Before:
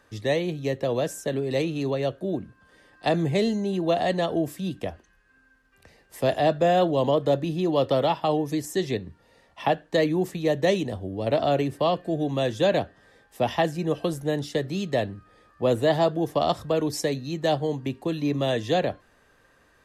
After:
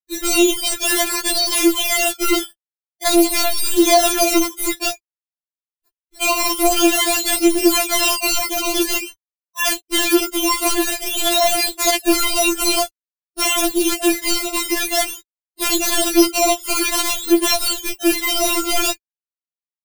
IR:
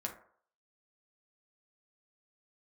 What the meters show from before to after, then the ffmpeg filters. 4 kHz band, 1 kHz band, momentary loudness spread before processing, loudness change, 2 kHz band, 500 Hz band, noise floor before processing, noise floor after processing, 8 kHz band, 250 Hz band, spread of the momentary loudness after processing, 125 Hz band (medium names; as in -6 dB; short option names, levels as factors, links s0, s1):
+16.0 dB, +6.0 dB, 8 LU, +9.0 dB, +13.0 dB, +2.0 dB, -61 dBFS, under -85 dBFS, +25.0 dB, +7.5 dB, 6 LU, under -15 dB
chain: -af "highshelf=f=3100:g=3.5,afftfilt=real='re*gte(hypot(re,im),0.0316)':imag='im*gte(hypot(re,im),0.0316)':win_size=1024:overlap=0.75,acrusher=samples=18:mix=1:aa=0.000001:lfo=1:lforange=18:lforate=0.5,acontrast=48,acrusher=bits=6:mode=log:mix=0:aa=0.000001,asoftclip=type=hard:threshold=0.0944,aexciter=amount=3.6:drive=2.9:freq=2300,apsyclip=13.3,afftfilt=real='re*4*eq(mod(b,16),0)':imag='im*4*eq(mod(b,16),0)':win_size=2048:overlap=0.75,volume=0.282"